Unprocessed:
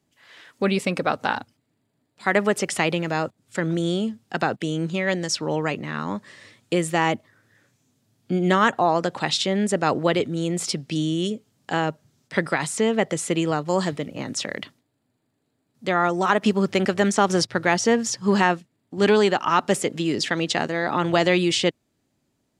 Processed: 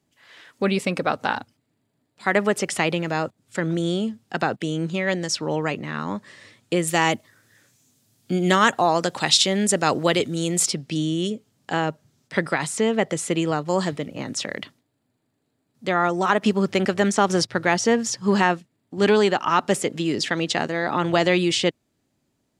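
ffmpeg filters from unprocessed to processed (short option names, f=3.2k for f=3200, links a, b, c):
-filter_complex "[0:a]asettb=1/sr,asplit=3[a][b][c];[a]atrim=end=6.874[d];[b]atrim=start=6.87:end=10.66,asetpts=PTS-STARTPTS,afade=t=in:d=0.004:c=qsin,afade=t=out:st=3.786:d=0.004:c=qsin,highshelf=f=3.7k:g=12[e];[c]atrim=start=10.656[f];[d][e]acrossfade=d=0.004:c1=hsin:c2=qsin[g];[g][f]acrossfade=d=0.004:c1=qsin:c2=hsin"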